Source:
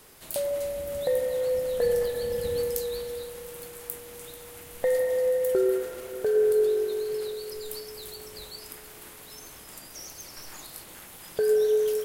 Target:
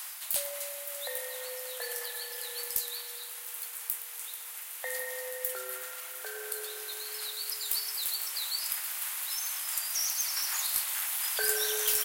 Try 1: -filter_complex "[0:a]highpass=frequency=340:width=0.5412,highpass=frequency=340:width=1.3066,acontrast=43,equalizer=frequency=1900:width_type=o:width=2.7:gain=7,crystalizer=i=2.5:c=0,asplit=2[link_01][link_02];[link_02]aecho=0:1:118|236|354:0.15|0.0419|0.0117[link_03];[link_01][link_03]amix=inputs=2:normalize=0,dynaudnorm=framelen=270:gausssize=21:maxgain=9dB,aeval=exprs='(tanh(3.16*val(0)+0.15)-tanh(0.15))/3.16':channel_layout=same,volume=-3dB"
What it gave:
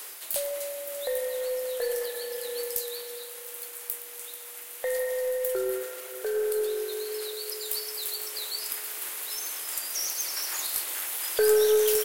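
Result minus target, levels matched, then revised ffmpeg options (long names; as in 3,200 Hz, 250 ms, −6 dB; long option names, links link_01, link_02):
250 Hz band +16.5 dB
-filter_complex "[0:a]highpass=frequency=750:width=0.5412,highpass=frequency=750:width=1.3066,acontrast=43,equalizer=frequency=1900:width_type=o:width=2.7:gain=7,crystalizer=i=2.5:c=0,asplit=2[link_01][link_02];[link_02]aecho=0:1:118|236|354:0.15|0.0419|0.0117[link_03];[link_01][link_03]amix=inputs=2:normalize=0,dynaudnorm=framelen=270:gausssize=21:maxgain=9dB,aeval=exprs='(tanh(3.16*val(0)+0.15)-tanh(0.15))/3.16':channel_layout=same,volume=-3dB"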